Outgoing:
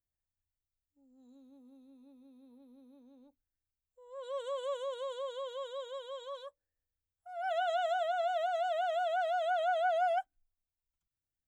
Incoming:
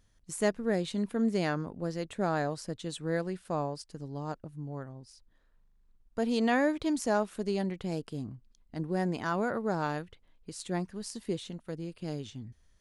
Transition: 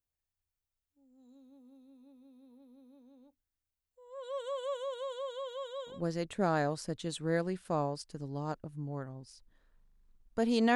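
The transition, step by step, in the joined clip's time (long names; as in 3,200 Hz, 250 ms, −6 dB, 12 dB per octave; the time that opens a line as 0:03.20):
outgoing
0:05.94: continue with incoming from 0:01.74, crossfade 0.16 s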